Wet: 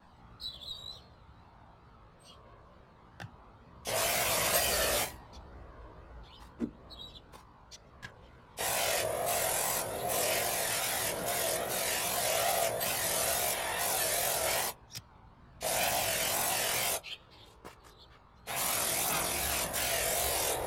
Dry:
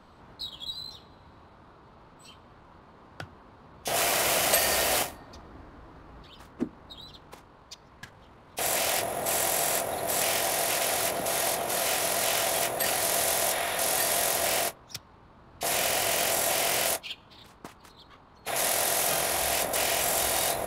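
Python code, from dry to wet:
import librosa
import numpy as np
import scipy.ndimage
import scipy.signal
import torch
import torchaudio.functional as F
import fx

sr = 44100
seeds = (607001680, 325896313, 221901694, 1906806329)

y = fx.chorus_voices(x, sr, voices=4, hz=0.15, base_ms=17, depth_ms=1.2, mix_pct=60)
y = fx.wow_flutter(y, sr, seeds[0], rate_hz=2.1, depth_cents=81.0)
y = y * librosa.db_to_amplitude(-1.5)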